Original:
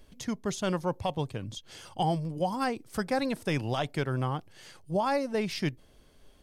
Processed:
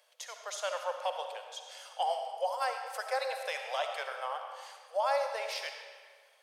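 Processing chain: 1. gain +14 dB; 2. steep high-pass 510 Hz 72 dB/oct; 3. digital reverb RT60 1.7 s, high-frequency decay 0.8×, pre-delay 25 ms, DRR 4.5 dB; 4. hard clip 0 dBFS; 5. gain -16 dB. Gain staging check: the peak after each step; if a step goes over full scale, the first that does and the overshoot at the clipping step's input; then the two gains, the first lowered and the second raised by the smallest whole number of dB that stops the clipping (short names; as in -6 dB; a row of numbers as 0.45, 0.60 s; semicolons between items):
-4.0, -3.0, -2.5, -2.5, -18.5 dBFS; no overload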